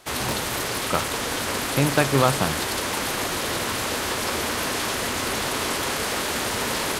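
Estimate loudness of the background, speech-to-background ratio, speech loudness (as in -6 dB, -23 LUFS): -25.0 LUFS, 1.0 dB, -24.0 LUFS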